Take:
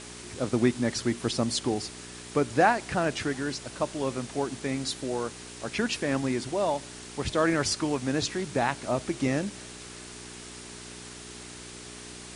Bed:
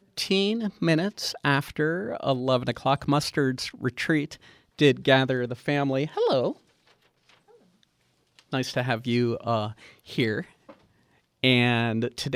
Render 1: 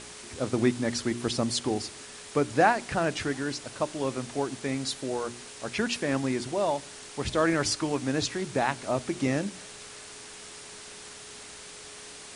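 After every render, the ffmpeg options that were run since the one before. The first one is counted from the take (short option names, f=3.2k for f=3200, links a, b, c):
-af "bandreject=f=60:t=h:w=4,bandreject=f=120:t=h:w=4,bandreject=f=180:t=h:w=4,bandreject=f=240:t=h:w=4,bandreject=f=300:t=h:w=4,bandreject=f=360:t=h:w=4"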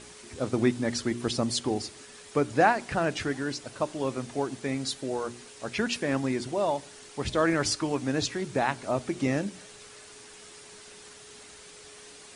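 -af "afftdn=nr=6:nf=-45"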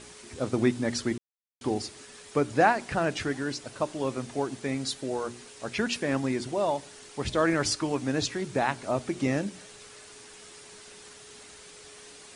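-filter_complex "[0:a]asplit=3[a][b][c];[a]atrim=end=1.18,asetpts=PTS-STARTPTS,afade=t=out:st=1.176:d=0.004:c=hsin[d];[b]atrim=start=1.18:end=1.61,asetpts=PTS-STARTPTS,volume=0[e];[c]atrim=start=1.61,asetpts=PTS-STARTPTS,afade=t=in:d=0.004:c=hsin[f];[d][e][f]concat=n=3:v=0:a=1"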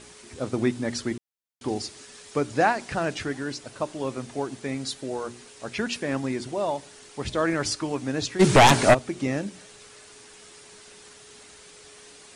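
-filter_complex "[0:a]asettb=1/sr,asplit=3[a][b][c];[a]atrim=end=1.684[d];[b]atrim=start=1.68:end=3.15,asetpts=PTS-STARTPTS,afade=t=in:d=0.004:c=qsin,afade=t=out:st=1.466:d=0.004:c=qsin,equalizer=f=5.6k:t=o:w=1.5:g=3.5[e];[c]atrim=start=3.146[f];[d][e]acrossfade=d=0.004:c1=hsin:c2=qsin[g];[g][f]acrossfade=d=0.004:c1=qsin:c2=hsin,asplit=3[h][i][j];[h]afade=t=out:st=8.39:d=0.02[k];[i]aeval=exprs='0.335*sin(PI/2*5.62*val(0)/0.335)':c=same,afade=t=in:st=8.39:d=0.02,afade=t=out:st=8.93:d=0.02[l];[j]afade=t=in:st=8.93:d=0.02[m];[k][l][m]amix=inputs=3:normalize=0"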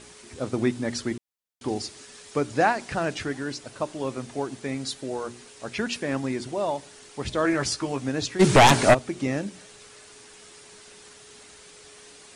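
-filter_complex "[0:a]asettb=1/sr,asplit=3[a][b][c];[a]atrim=end=7.434[d];[b]atrim=start=7.43:end=8.09,asetpts=PTS-STARTPTS,afade=t=in:d=0.004:c=qsin,afade=t=out:st=0.656:d=0.004:c=qsin,asplit=2[e][f];[f]adelay=15,volume=-7dB[g];[e][g]amix=inputs=2:normalize=0,atrim=end_sample=29106[h];[c]atrim=start=8.086[i];[d][h]acrossfade=d=0.004:c1=hsin:c2=qsin[j];[j][i]acrossfade=d=0.004:c1=qsin:c2=hsin"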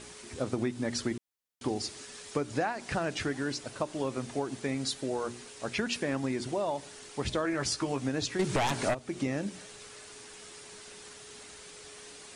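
-af "acompressor=threshold=-27dB:ratio=8"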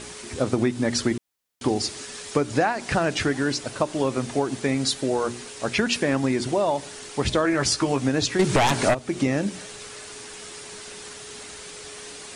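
-af "volume=9dB"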